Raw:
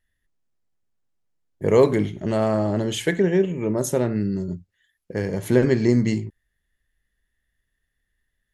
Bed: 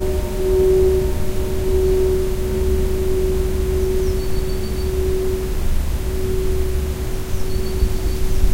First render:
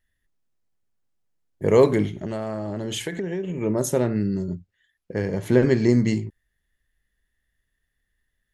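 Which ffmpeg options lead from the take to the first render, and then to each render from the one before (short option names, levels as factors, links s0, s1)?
-filter_complex "[0:a]asettb=1/sr,asplit=3[s0][s1][s2];[s0]atrim=end=2.134[s3];[s1]atrim=start=2.13:end=3.61,asetpts=PTS-STARTPTS,afade=t=in:d=0.004:c=qsin,afade=t=out:st=1.476:d=0.004:c=qsin,acompressor=threshold=0.0631:ratio=10:attack=3.2:release=140:knee=1:detection=peak[s4];[s2]atrim=start=3.606[s5];[s3][s4]acrossfade=d=0.004:c1=hsin:c2=qsin[s6];[s6][s5]acrossfade=d=0.004:c1=qsin:c2=hsin,asettb=1/sr,asplit=3[s7][s8][s9];[s7]atrim=end=4.494[s10];[s8]atrim=start=4.49:end=5.65,asetpts=PTS-STARTPTS,afade=t=in:d=0.004:c=qsin,afade=t=out:st=1.156:d=0.004:c=qsin,highshelf=f=8000:g=-10.5[s11];[s9]atrim=start=5.646[s12];[s10][s11]acrossfade=d=0.004:c1=hsin:c2=qsin[s13];[s13][s12]acrossfade=d=0.004:c1=qsin:c2=hsin"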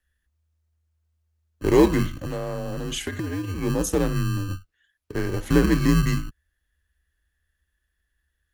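-filter_complex "[0:a]acrossover=split=290|1300[s0][s1][s2];[s0]acrusher=samples=30:mix=1:aa=0.000001[s3];[s3][s1][s2]amix=inputs=3:normalize=0,afreqshift=-79"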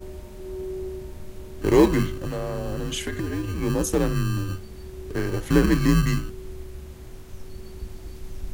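-filter_complex "[1:a]volume=0.126[s0];[0:a][s0]amix=inputs=2:normalize=0"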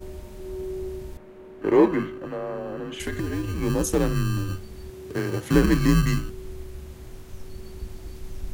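-filter_complex "[0:a]asettb=1/sr,asplit=3[s0][s1][s2];[s0]atrim=end=1.174[s3];[s1]atrim=start=1.17:end=3,asetpts=PTS-STARTPTS,afade=t=in:d=0.004:c=qsin,afade=t=out:st=1.826:d=0.004:c=qsin,acrossover=split=190 2500:gain=0.112 1 0.112[s4][s5][s6];[s4][s5][s6]amix=inputs=3:normalize=0[s7];[s2]atrim=start=2.996[s8];[s3][s7]acrossfade=d=0.004:c1=hsin:c2=qsin[s9];[s9][s8]acrossfade=d=0.004:c1=qsin:c2=hsin,asettb=1/sr,asplit=3[s10][s11][s12];[s10]atrim=end=4.904[s13];[s11]atrim=start=4.9:end=5.54,asetpts=PTS-STARTPTS,afade=t=in:d=0.004:c=qsin,afade=t=out:st=0.636:d=0.004:c=qsin,highpass=f=90:w=0.5412,highpass=f=90:w=1.3066[s14];[s12]atrim=start=5.536[s15];[s13][s14]acrossfade=d=0.004:c1=hsin:c2=qsin[s16];[s16][s15]acrossfade=d=0.004:c1=qsin:c2=hsin"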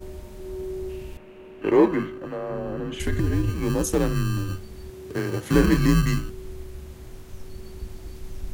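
-filter_complex "[0:a]asettb=1/sr,asplit=3[s0][s1][s2];[s0]atrim=end=0.894[s3];[s1]atrim=start=0.89:end=1.71,asetpts=PTS-STARTPTS,afade=t=in:d=0.004:c=qsin,afade=t=out:st=0.816:d=0.004:c=qsin,equalizer=f=2700:w=3.3:g=12[s4];[s2]atrim=start=1.706[s5];[s3][s4]acrossfade=d=0.004:c1=hsin:c2=qsin[s6];[s6][s5]acrossfade=d=0.004:c1=qsin:c2=hsin,asettb=1/sr,asplit=3[s7][s8][s9];[s7]atrim=end=2.504[s10];[s8]atrim=start=2.5:end=3.5,asetpts=PTS-STARTPTS,afade=t=in:d=0.004:c=qsin,afade=t=out:st=0.996:d=0.004:c=qsin,lowshelf=f=180:g=10.5[s11];[s9]atrim=start=3.496[s12];[s10][s11]acrossfade=d=0.004:c1=hsin:c2=qsin[s13];[s13][s12]acrossfade=d=0.004:c1=qsin:c2=hsin,asettb=1/sr,asplit=3[s14][s15][s16];[s14]atrim=end=5.424[s17];[s15]atrim=start=5.42:end=5.87,asetpts=PTS-STARTPTS,afade=t=in:d=0.004:c=qsin,afade=t=out:st=0.446:d=0.004:c=qsin,asplit=2[s18][s19];[s19]adelay=28,volume=0.422[s20];[s18][s20]amix=inputs=2:normalize=0,atrim=end_sample=19845[s21];[s16]atrim=start=5.866[s22];[s17][s21]acrossfade=d=0.004:c1=hsin:c2=qsin[s23];[s23][s22]acrossfade=d=0.004:c1=qsin:c2=hsin"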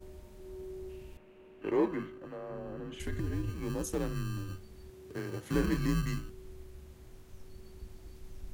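-af "volume=0.266"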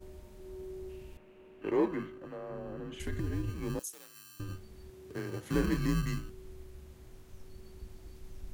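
-filter_complex "[0:a]asettb=1/sr,asplit=3[s0][s1][s2];[s0]atrim=end=3.794[s3];[s1]atrim=start=3.79:end=4.4,asetpts=PTS-STARTPTS,afade=t=in:d=0.004:c=qsin,afade=t=out:st=0.606:d=0.004:c=qsin,aderivative[s4];[s2]atrim=start=4.396[s5];[s3][s4]acrossfade=d=0.004:c1=hsin:c2=qsin[s6];[s6][s5]acrossfade=d=0.004:c1=qsin:c2=hsin"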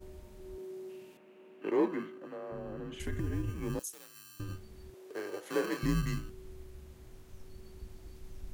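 -filter_complex "[0:a]asettb=1/sr,asplit=3[s0][s1][s2];[s0]atrim=end=0.584[s3];[s1]atrim=start=0.58:end=2.52,asetpts=PTS-STARTPTS,afade=t=in:d=0.004:c=qsin,afade=t=out:st=1.936:d=0.004:c=qsin,highpass=f=180:w=0.5412,highpass=f=180:w=1.3066[s4];[s2]atrim=start=2.516[s5];[s3][s4]acrossfade=d=0.004:c1=hsin:c2=qsin[s6];[s6][s5]acrossfade=d=0.004:c1=qsin:c2=hsin,asettb=1/sr,asplit=3[s7][s8][s9];[s7]atrim=end=3.064[s10];[s8]atrim=start=3.06:end=3.73,asetpts=PTS-STARTPTS,afade=t=in:d=0.004:c=qsin,afade=t=out:st=0.666:d=0.004:c=qsin,equalizer=f=4200:w=4.8:g=-10.5[s11];[s9]atrim=start=3.726[s12];[s10][s11]acrossfade=d=0.004:c1=hsin:c2=qsin[s13];[s13][s12]acrossfade=d=0.004:c1=qsin:c2=hsin,asettb=1/sr,asplit=3[s14][s15][s16];[s14]atrim=end=4.944[s17];[s15]atrim=start=4.94:end=5.83,asetpts=PTS-STARTPTS,afade=t=in:d=0.004:c=qsin,afade=t=out:st=0.886:d=0.004:c=qsin,highpass=f=490:t=q:w=1.7[s18];[s16]atrim=start=5.826[s19];[s17][s18]acrossfade=d=0.004:c1=hsin:c2=qsin[s20];[s20][s19]acrossfade=d=0.004:c1=qsin:c2=hsin"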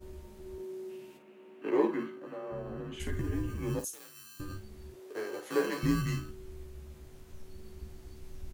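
-af "aecho=1:1:14|53:0.631|0.335"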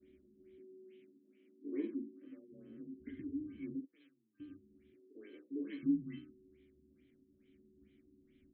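-filter_complex "[0:a]asplit=3[s0][s1][s2];[s0]bandpass=f=270:t=q:w=8,volume=1[s3];[s1]bandpass=f=2290:t=q:w=8,volume=0.501[s4];[s2]bandpass=f=3010:t=q:w=8,volume=0.355[s5];[s3][s4][s5]amix=inputs=3:normalize=0,afftfilt=real='re*lt(b*sr/1024,430*pow(4200/430,0.5+0.5*sin(2*PI*2.3*pts/sr)))':imag='im*lt(b*sr/1024,430*pow(4200/430,0.5+0.5*sin(2*PI*2.3*pts/sr)))':win_size=1024:overlap=0.75"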